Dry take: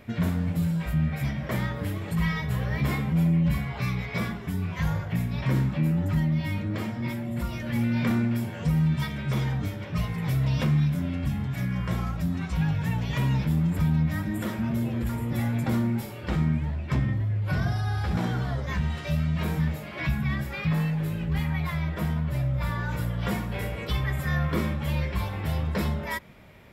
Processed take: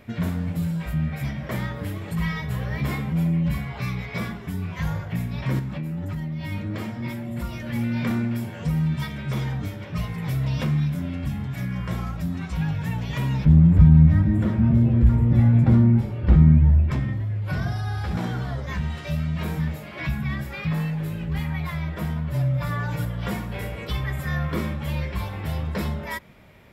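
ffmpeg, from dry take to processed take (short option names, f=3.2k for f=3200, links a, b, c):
-filter_complex "[0:a]asettb=1/sr,asplit=3[a][b][c];[a]atrim=end=5.594[d];[b]atrim=start=5.59:end=6.52,asetpts=PTS-STARTPTS,afade=t=in:d=0.004:c=qsin,afade=t=out:st=0.926:d=0.004:c=qsin,acompressor=threshold=-26dB:ratio=6:attack=3.2:release=140:knee=1:detection=peak[e];[c]atrim=start=6.516[f];[d][e]acrossfade=d=0.004:c1=hsin:c2=qsin[g];[g][f]acrossfade=d=0.004:c1=qsin:c2=hsin,asettb=1/sr,asplit=3[h][i][j];[h]atrim=end=13.454[k];[i]atrim=start=13.45:end=16.91,asetpts=PTS-STARTPTS,afade=t=in:d=0.004:c=qsin,afade=t=out:st=3.456:d=0.004:c=qsin,aemphasis=mode=reproduction:type=riaa[l];[j]atrim=start=16.906[m];[k][l]acrossfade=d=0.004:c1=hsin:c2=qsin[n];[n][m]acrossfade=d=0.004:c1=qsin:c2=hsin,asettb=1/sr,asplit=3[o][p][q];[o]atrim=end=22.334[r];[p]atrim=start=22.33:end=23.05,asetpts=PTS-STARTPTS,afade=t=in:d=0.004:c=qsin,afade=t=out:st=0.716:d=0.004:c=qsin,aecho=1:1:7:0.8,atrim=end_sample=31752[s];[q]atrim=start=23.046[t];[r][s]acrossfade=d=0.004:c1=hsin:c2=qsin[u];[u][t]acrossfade=d=0.004:c1=qsin:c2=hsin"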